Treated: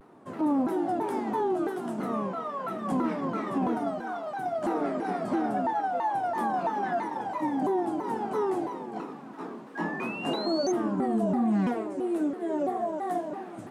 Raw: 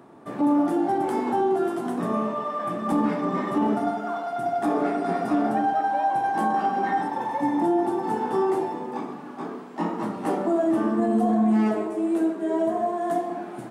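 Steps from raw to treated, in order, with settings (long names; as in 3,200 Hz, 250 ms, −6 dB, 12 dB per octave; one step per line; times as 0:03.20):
sound drawn into the spectrogram rise, 0:09.75–0:10.72, 1,500–5,800 Hz −34 dBFS
pitch modulation by a square or saw wave saw down 3 Hz, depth 250 cents
level −5 dB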